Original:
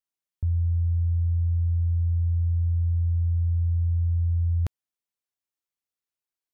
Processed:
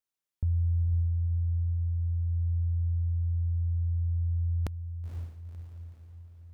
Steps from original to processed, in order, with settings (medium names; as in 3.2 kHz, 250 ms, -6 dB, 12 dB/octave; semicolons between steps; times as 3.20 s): dynamic bell 110 Hz, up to -4 dB, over -38 dBFS, Q 1.2; echo that smears into a reverb 507 ms, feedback 50%, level -8 dB